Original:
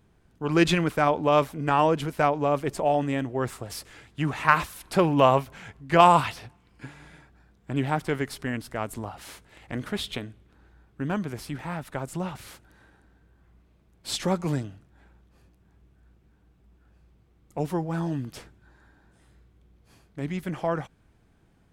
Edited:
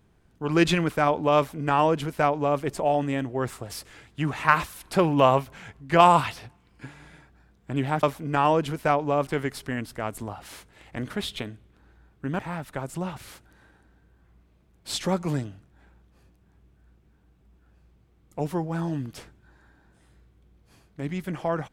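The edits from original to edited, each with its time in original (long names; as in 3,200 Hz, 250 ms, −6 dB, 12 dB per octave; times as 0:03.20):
0:01.37–0:02.61: duplicate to 0:08.03
0:11.15–0:11.58: remove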